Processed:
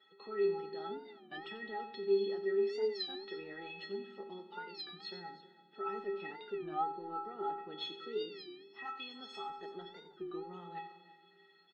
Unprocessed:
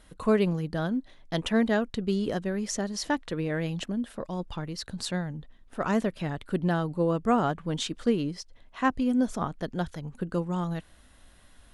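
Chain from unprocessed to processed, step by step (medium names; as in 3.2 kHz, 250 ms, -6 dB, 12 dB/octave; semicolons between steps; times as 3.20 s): coarse spectral quantiser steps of 15 dB; Chebyshev band-pass 180–4200 Hz, order 4; 8.85–9.50 s: tilt EQ +4 dB/octave; peak limiter -24.5 dBFS, peak gain reduction 12 dB; inharmonic resonator 390 Hz, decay 0.61 s, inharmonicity 0.03; multi-tap echo 90/331 ms -13/-18 dB; reverberation RT60 1.9 s, pre-delay 5 ms, DRR 12.5 dB; warped record 33 1/3 rpm, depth 160 cents; trim +15 dB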